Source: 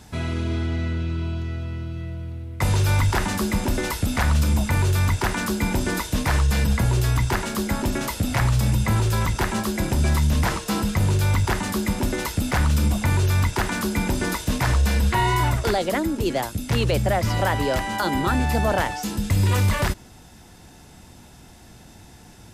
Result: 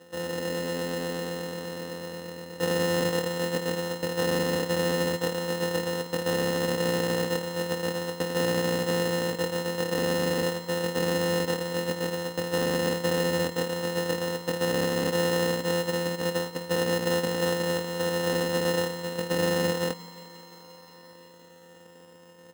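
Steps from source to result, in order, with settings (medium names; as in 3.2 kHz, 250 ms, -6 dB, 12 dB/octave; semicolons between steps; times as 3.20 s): sorted samples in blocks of 256 samples; elliptic band-pass 130–2200 Hz; peaking EQ 480 Hz +14.5 dB 0.29 oct; comb 3.8 ms, depth 74%; sample-and-hold 19×; on a send: thinning echo 175 ms, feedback 85%, high-pass 170 Hz, level -18 dB; on the sum: trim -9 dB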